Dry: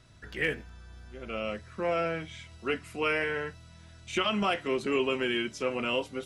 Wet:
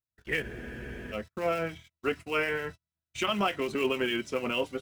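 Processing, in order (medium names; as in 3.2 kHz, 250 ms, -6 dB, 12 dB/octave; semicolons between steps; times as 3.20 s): gate -42 dBFS, range -40 dB; in parallel at -10.5 dB: companded quantiser 4-bit; on the sum: tempo 1.3×; harmonic tremolo 6.7 Hz, depth 50%, crossover 2 kHz; spectral freeze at 0.45 s, 0.67 s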